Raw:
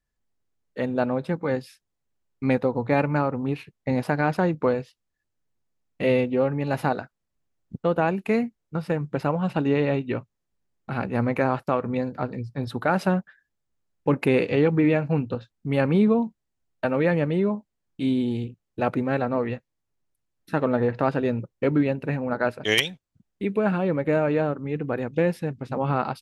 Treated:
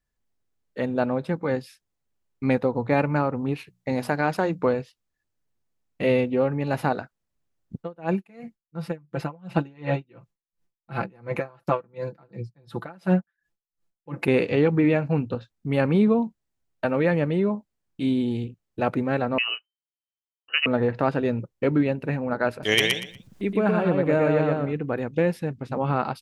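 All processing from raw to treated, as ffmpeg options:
-filter_complex "[0:a]asettb=1/sr,asplit=3[s0][s1][s2];[s0]atrim=end=3.574[s3];[s1]atrim=start=3.57:end=4.63,asetpts=PTS-STARTPTS,afade=t=in:d=0.004:c=qsin,afade=t=out:st=1.056:d=0.004:c=qsin,bass=f=250:g=-4,treble=f=4000:g=5,bandreject=f=60:t=h:w=6,bandreject=f=120:t=h:w=6,bandreject=f=180:t=h:w=6,bandreject=f=240:t=h:w=6[s4];[s2]atrim=start=4.626[s5];[s3][s4]acrossfade=d=0.004:c1=hsin:c2=qsin[s6];[s6][s5]acrossfade=d=0.004:c1=qsin:c2=hsin,asettb=1/sr,asplit=3[s7][s8][s9];[s7]atrim=end=7.784[s10];[s8]atrim=start=7.78:end=14.28,asetpts=PTS-STARTPTS,afade=t=in:d=0.004:c=qsin,afade=t=out:st=6.496:d=0.004:c=qsin,aecho=1:1:5.9:0.8,atrim=end_sample=286650,aeval=exprs='val(0)*pow(10,-30*(0.5-0.5*cos(2*PI*2.8*n/s))/20)':c=same[s11];[s9]atrim=start=14.276[s12];[s10][s11]acrossfade=d=0.004:c1=hsin:c2=qsin[s13];[s13][s12]acrossfade=d=0.004:c1=qsin:c2=hsin,asettb=1/sr,asplit=3[s14][s15][s16];[s14]atrim=end=19.384[s17];[s15]atrim=start=19.38:end=20.66,asetpts=PTS-STARTPTS,afade=t=in:d=0.004:c=qsin,afade=t=out:st=1.276:d=0.004:c=qsin,agate=range=0.0224:threshold=0.00141:ratio=3:release=100:detection=peak,lowpass=f=2600:t=q:w=0.5098,lowpass=f=2600:t=q:w=0.6013,lowpass=f=2600:t=q:w=0.9,lowpass=f=2600:t=q:w=2.563,afreqshift=-3100[s18];[s16]atrim=start=20.656[s19];[s17][s18]acrossfade=d=0.004:c1=hsin:c2=qsin[s20];[s20][s19]acrossfade=d=0.004:c1=qsin:c2=hsin,asettb=1/sr,asplit=3[s21][s22][s23];[s21]atrim=end=22.514[s24];[s22]atrim=start=22.51:end=24.73,asetpts=PTS-STARTPTS,afade=t=in:d=0.004:c=qsin,afade=t=out:st=2.216:d=0.004:c=qsin,acompressor=mode=upward:threshold=0.0178:ratio=2.5:attack=3.2:release=140:knee=2.83:detection=peak,aecho=1:1:119|238|357:0.708|0.163|0.0375,atrim=end_sample=97902[s25];[s23]atrim=start=24.726[s26];[s24][s25]acrossfade=d=0.004:c1=hsin:c2=qsin[s27];[s27][s26]acrossfade=d=0.004:c1=qsin:c2=hsin"

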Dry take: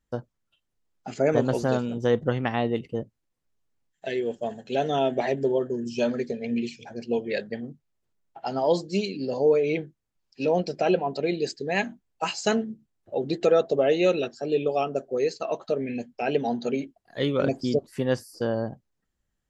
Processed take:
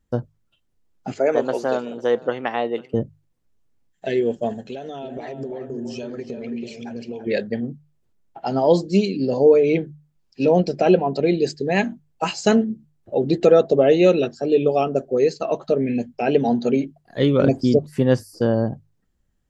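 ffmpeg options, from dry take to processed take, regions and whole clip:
-filter_complex "[0:a]asettb=1/sr,asplit=3[s0][s1][s2];[s0]atrim=end=1.124[s3];[s1]atrim=start=1.12:end=2.94,asetpts=PTS-STARTPTS,afade=t=in:d=0.004:c=qsin,afade=t=out:st=1.816:d=0.004:c=qsin,highpass=490,highshelf=f=5100:g=-5.5,aecho=1:1:497:0.0794,atrim=end_sample=80262[s4];[s2]atrim=start=2.936[s5];[s3][s4]acrossfade=d=0.004:c1=hsin:c2=qsin[s6];[s6][s5]acrossfade=d=0.004:c1=qsin:c2=hsin,asettb=1/sr,asplit=3[s7][s8][s9];[s7]atrim=end=4.694[s10];[s8]atrim=start=4.69:end=7.27,asetpts=PTS-STARTPTS,afade=t=in:d=0.004:c=qsin,afade=t=out:st=2.576:d=0.004:c=qsin,lowshelf=f=410:g=-6,acompressor=threshold=0.0178:ratio=12:attack=3.2:release=140:knee=1:detection=peak,asplit=2[s11][s12];[s12]adelay=331,lowpass=f=1300:p=1,volume=0.501,asplit=2[s13][s14];[s14]adelay=331,lowpass=f=1300:p=1,volume=0.39,asplit=2[s15][s16];[s16]adelay=331,lowpass=f=1300:p=1,volume=0.39,asplit=2[s17][s18];[s18]adelay=331,lowpass=f=1300:p=1,volume=0.39,asplit=2[s19][s20];[s20]adelay=331,lowpass=f=1300:p=1,volume=0.39[s21];[s11][s13][s15][s17][s19][s21]amix=inputs=6:normalize=0,atrim=end_sample=113778[s22];[s9]atrim=start=7.266[s23];[s10][s22]acrossfade=d=0.004:c1=hsin:c2=qsin[s24];[s24][s23]acrossfade=d=0.004:c1=qsin:c2=hsin,lowshelf=f=470:g=8.5,bandreject=f=50:t=h:w=6,bandreject=f=100:t=h:w=6,bandreject=f=150:t=h:w=6,volume=1.33"

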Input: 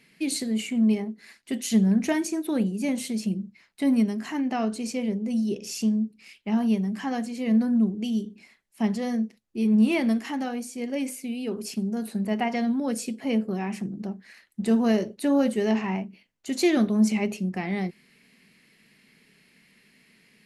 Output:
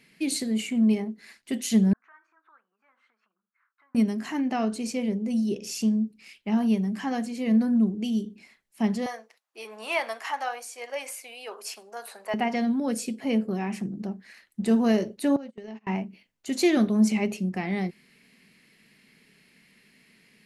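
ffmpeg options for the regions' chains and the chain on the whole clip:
-filter_complex "[0:a]asettb=1/sr,asplit=3[s0][s1][s2];[s0]atrim=end=1.934[s3];[s1]atrim=start=1.93:end=3.95,asetpts=PTS-STARTPTS,afade=t=in:d=0.004:c=qsin,afade=t=out:st=2.016:d=0.004:c=qsin,acompressor=threshold=0.0251:ratio=10:attack=3.2:release=140:knee=1:detection=peak,asuperpass=centerf=1300:order=4:qfactor=2.9[s4];[s2]atrim=start=3.946[s5];[s3][s4]acrossfade=d=0.004:c1=hsin:c2=qsin[s6];[s6][s5]acrossfade=d=0.004:c1=qsin:c2=hsin,asettb=1/sr,asplit=3[s7][s8][s9];[s7]atrim=end=9.064[s10];[s8]atrim=start=9.06:end=12.34,asetpts=PTS-STARTPTS,afade=t=in:d=0.004:c=qsin,afade=t=out:st=3.276:d=0.004:c=qsin,highpass=f=570:w=0.5412,highpass=f=570:w=1.3066,equalizer=f=1100:w=0.99:g=8[s11];[s9]atrim=start=12.336[s12];[s10][s11]acrossfade=d=0.004:c1=hsin:c2=qsin[s13];[s13][s12]acrossfade=d=0.004:c1=qsin:c2=hsin,asettb=1/sr,asplit=3[s14][s15][s16];[s14]atrim=end=15.364[s17];[s15]atrim=start=15.36:end=15.87,asetpts=PTS-STARTPTS,afade=t=in:d=0.004:c=qsin,afade=t=out:st=0.506:d=0.004:c=qsin,lowpass=6600,agate=range=0.0282:threshold=0.0631:ratio=16:release=100:detection=peak,acompressor=threshold=0.0158:ratio=8:attack=3.2:release=140:knee=1:detection=peak[s18];[s16]atrim=start=15.866[s19];[s17][s18]acrossfade=d=0.004:c1=hsin:c2=qsin[s20];[s20][s19]acrossfade=d=0.004:c1=qsin:c2=hsin"

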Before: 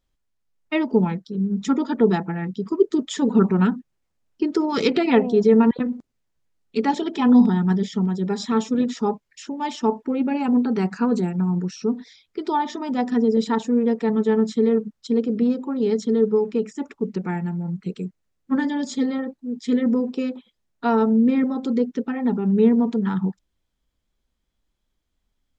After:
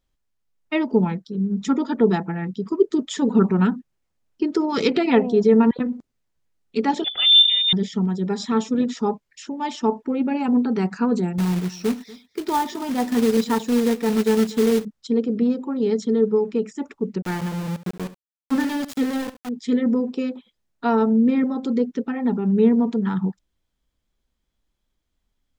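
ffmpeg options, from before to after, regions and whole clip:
-filter_complex "[0:a]asettb=1/sr,asplit=3[s0][s1][s2];[s0]atrim=end=7.044[s3];[s1]atrim=start=7.04:end=7.73,asetpts=PTS-STARTPTS,afade=t=in:d=0.004:c=qsin,afade=t=out:st=0.686:d=0.004:c=qsin,equalizer=f=1300:w=6.2:g=-4.5,lowpass=f=3200:t=q:w=0.5098,lowpass=f=3200:t=q:w=0.6013,lowpass=f=3200:t=q:w=0.9,lowpass=f=3200:t=q:w=2.563,afreqshift=-3800[s4];[s2]atrim=start=7.726[s5];[s3][s4]acrossfade=d=0.004:c1=hsin:c2=qsin[s6];[s6][s5]acrossfade=d=0.004:c1=qsin:c2=hsin,asettb=1/sr,asplit=3[s7][s8][s9];[s7]atrim=end=11.384[s10];[s8]atrim=start=11.38:end=14.85,asetpts=PTS-STARTPTS,afade=t=in:d=0.004:c=qsin,afade=t=out:st=3.466:d=0.004:c=qsin,highpass=60,acrusher=bits=3:mode=log:mix=0:aa=0.000001,aecho=1:1:239:0.0944,atrim=end_sample=153027[s11];[s9]atrim=start=14.846[s12];[s10][s11]acrossfade=d=0.004:c1=hsin:c2=qsin[s13];[s13][s12]acrossfade=d=0.004:c1=qsin:c2=hsin,asettb=1/sr,asplit=3[s14][s15][s16];[s14]atrim=end=17.224[s17];[s15]atrim=start=17.22:end=19.49,asetpts=PTS-STARTPTS,afade=t=in:d=0.004:c=qsin,afade=t=out:st=2.266:d=0.004:c=qsin,aeval=exprs='val(0)*gte(abs(val(0)),0.0398)':c=same,aecho=1:1:71:0.178,atrim=end_sample=100107[s18];[s16]atrim=start=19.486[s19];[s17][s18]acrossfade=d=0.004:c1=hsin:c2=qsin[s20];[s20][s19]acrossfade=d=0.004:c1=qsin:c2=hsin"

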